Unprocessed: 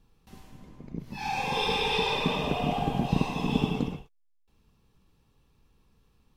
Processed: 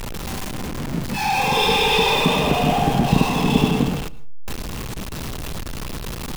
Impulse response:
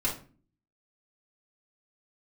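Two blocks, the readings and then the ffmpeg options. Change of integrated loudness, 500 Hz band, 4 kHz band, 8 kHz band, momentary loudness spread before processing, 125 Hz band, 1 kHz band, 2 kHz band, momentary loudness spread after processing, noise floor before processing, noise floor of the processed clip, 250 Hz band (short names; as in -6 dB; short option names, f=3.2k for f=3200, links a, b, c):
+8.0 dB, +10.0 dB, +10.5 dB, +17.0 dB, 13 LU, +10.0 dB, +10.5 dB, +10.5 dB, 15 LU, -67 dBFS, -30 dBFS, +9.5 dB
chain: -filter_complex "[0:a]aeval=exprs='val(0)+0.5*0.0299*sgn(val(0))':c=same,asplit=2[a][b];[1:a]atrim=start_sample=2205,afade=t=out:st=0.21:d=0.01,atrim=end_sample=9702,adelay=111[c];[b][c]afir=irnorm=-1:irlink=0,volume=-26.5dB[d];[a][d]amix=inputs=2:normalize=0,volume=7.5dB"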